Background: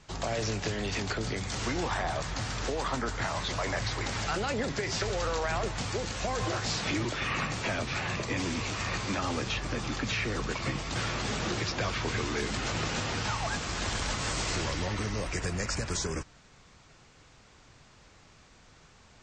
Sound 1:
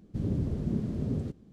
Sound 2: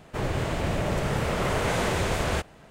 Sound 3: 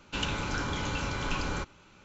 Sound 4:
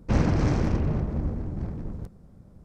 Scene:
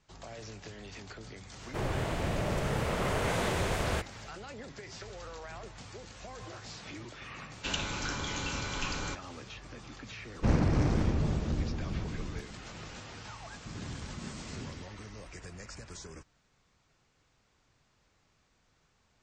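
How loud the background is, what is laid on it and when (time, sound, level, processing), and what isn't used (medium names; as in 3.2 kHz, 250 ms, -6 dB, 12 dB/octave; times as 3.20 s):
background -14 dB
1.60 s: add 2 -5 dB
7.51 s: add 3 -5 dB + treble shelf 3.5 kHz +10 dB
10.34 s: add 4 -4 dB
13.51 s: add 1 -13 dB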